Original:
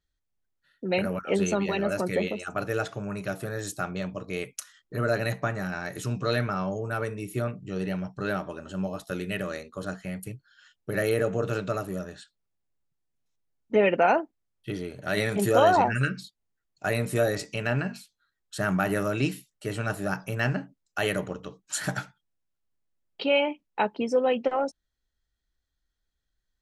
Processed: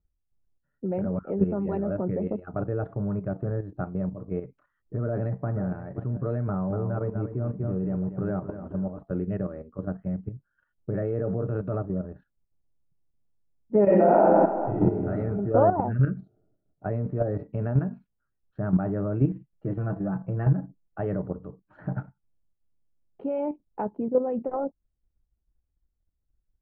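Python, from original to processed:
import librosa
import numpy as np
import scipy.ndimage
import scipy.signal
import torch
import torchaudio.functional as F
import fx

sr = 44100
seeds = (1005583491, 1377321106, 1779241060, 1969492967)

y = fx.echo_throw(x, sr, start_s=5.03, length_s=0.62, ms=530, feedback_pct=35, wet_db=-13.5)
y = fx.echo_crushed(y, sr, ms=237, feedback_pct=35, bits=8, wet_db=-6.0, at=(6.46, 8.98))
y = fx.high_shelf(y, sr, hz=2500.0, db=7.5, at=(10.94, 11.83))
y = fx.reverb_throw(y, sr, start_s=13.83, length_s=1.24, rt60_s=1.7, drr_db=-9.5)
y = fx.comb(y, sr, ms=6.0, depth=0.72, at=(19.31, 20.99))
y = scipy.signal.sosfilt(scipy.signal.bessel(4, 780.0, 'lowpass', norm='mag', fs=sr, output='sos'), y)
y = fx.low_shelf(y, sr, hz=220.0, db=8.5)
y = fx.level_steps(y, sr, step_db=10)
y = y * 10.0 ** (2.5 / 20.0)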